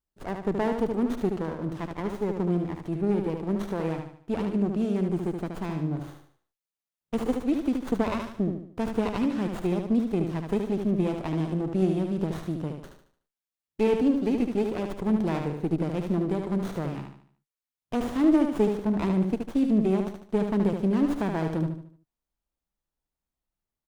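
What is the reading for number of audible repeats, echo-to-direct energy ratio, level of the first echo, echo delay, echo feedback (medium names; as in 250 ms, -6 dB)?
4, -4.5 dB, -5.5 dB, 74 ms, 40%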